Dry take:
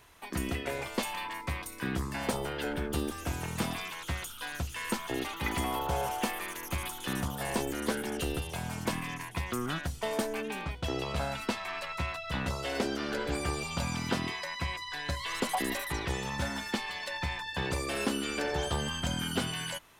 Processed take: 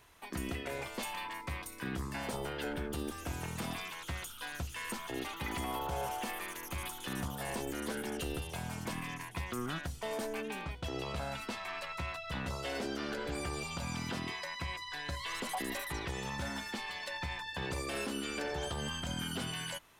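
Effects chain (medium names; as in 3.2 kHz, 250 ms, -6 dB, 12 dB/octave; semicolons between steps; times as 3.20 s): peak limiter -24 dBFS, peak gain reduction 8 dB; trim -3.5 dB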